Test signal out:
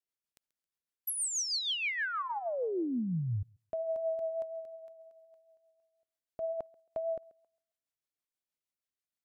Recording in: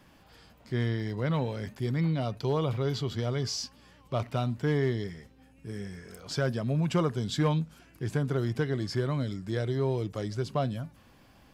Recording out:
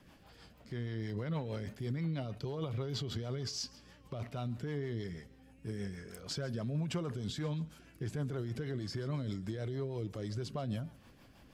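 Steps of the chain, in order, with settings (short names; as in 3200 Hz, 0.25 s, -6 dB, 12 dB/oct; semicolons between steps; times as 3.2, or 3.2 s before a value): limiter -28 dBFS; thinning echo 0.135 s, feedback 28%, high-pass 280 Hz, level -20.5 dB; rotary speaker horn 6.3 Hz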